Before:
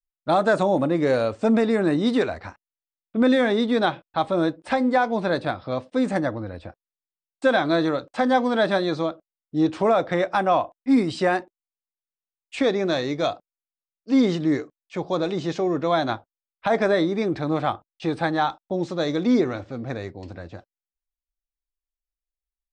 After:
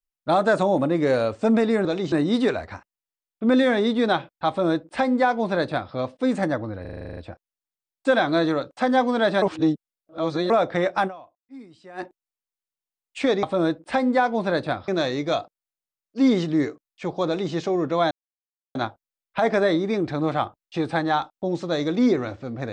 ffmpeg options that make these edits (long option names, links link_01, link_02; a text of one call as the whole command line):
ffmpeg -i in.wav -filter_complex "[0:a]asplit=19[link_01][link_02][link_03][link_04][link_05][link_06][link_07][link_08][link_09][link_10][link_11][link_12][link_13][link_14][link_15][link_16][link_17][link_18][link_19];[link_01]atrim=end=1.852[link_20];[link_02]atrim=start=15.178:end=15.452[link_21];[link_03]atrim=start=1.848:end=6.582[link_22];[link_04]atrim=start=6.538:end=6.582[link_23];[link_05]atrim=start=6.538:end=6.582[link_24];[link_06]atrim=start=6.538:end=6.582[link_25];[link_07]atrim=start=6.538:end=6.582[link_26];[link_08]atrim=start=6.538:end=6.582[link_27];[link_09]atrim=start=6.538:end=6.582[link_28];[link_10]atrim=start=6.538:end=6.582[link_29];[link_11]atrim=start=6.538:end=6.582[link_30];[link_12]atrim=start=6.538:end=8.792[link_31];[link_13]atrim=start=8.788:end=9.872,asetpts=PTS-STARTPTS,areverse[link_32];[link_14]atrim=start=9.868:end=10.65,asetpts=PTS-STARTPTS,afade=type=out:start_time=0.572:duration=0.21:curve=exp:silence=0.0668344[link_33];[link_15]atrim=start=10.65:end=11.17,asetpts=PTS-STARTPTS,volume=-23.5dB[link_34];[link_16]atrim=start=11.17:end=12.802,asetpts=PTS-STARTPTS,afade=type=in:duration=0.21:curve=exp:silence=0.0668344[link_35];[link_17]atrim=start=4.208:end=5.662[link_36];[link_18]atrim=start=12.798:end=16.03,asetpts=PTS-STARTPTS,afade=type=out:start_time=3.228:duration=0.004:curve=hsin,apad=pad_dur=0.64[link_37];[link_19]atrim=start=16.03,asetpts=PTS-STARTPTS,afade=type=in:duration=0.004:curve=hsin[link_38];[link_20][link_21]acrossfade=duration=0.004:curve1=hsin:curve2=hsin[link_39];[link_39][link_22]acrossfade=duration=0.004:curve1=hsin:curve2=hsin[link_40];[link_40][link_23]acrossfade=duration=0.004:curve1=hsin:curve2=hsin[link_41];[link_41][link_24]acrossfade=duration=0.004:curve1=hsin:curve2=hsin[link_42];[link_42][link_25]acrossfade=duration=0.004:curve1=hsin:curve2=hsin[link_43];[link_43][link_26]acrossfade=duration=0.004:curve1=hsin:curve2=hsin[link_44];[link_44][link_27]acrossfade=duration=0.004:curve1=hsin:curve2=hsin[link_45];[link_45][link_28]acrossfade=duration=0.004:curve1=hsin:curve2=hsin[link_46];[link_46][link_29]acrossfade=duration=0.004:curve1=hsin:curve2=hsin[link_47];[link_47][link_30]acrossfade=duration=0.004:curve1=hsin:curve2=hsin[link_48];[link_48][link_31]acrossfade=duration=0.004:curve1=hsin:curve2=hsin[link_49];[link_49][link_32]acrossfade=duration=0.004:curve1=hsin:curve2=hsin[link_50];[link_33][link_34][link_35]concat=n=3:v=0:a=1[link_51];[link_50][link_51]acrossfade=duration=0.004:curve1=hsin:curve2=hsin[link_52];[link_52][link_36]acrossfade=duration=0.004:curve1=hsin:curve2=hsin[link_53];[link_37][link_38]concat=n=2:v=0:a=1[link_54];[link_53][link_54]acrossfade=duration=0.004:curve1=hsin:curve2=hsin" out.wav